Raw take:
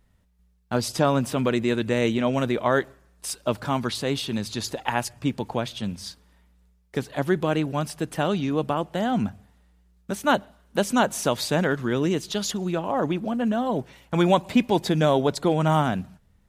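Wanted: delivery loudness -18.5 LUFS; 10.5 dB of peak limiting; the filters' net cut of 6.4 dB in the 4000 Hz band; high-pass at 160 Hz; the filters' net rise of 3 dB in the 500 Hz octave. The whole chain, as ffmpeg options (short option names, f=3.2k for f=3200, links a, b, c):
-af "highpass=160,equalizer=f=500:t=o:g=4,equalizer=f=4k:t=o:g=-8.5,volume=9.5dB,alimiter=limit=-7dB:level=0:latency=1"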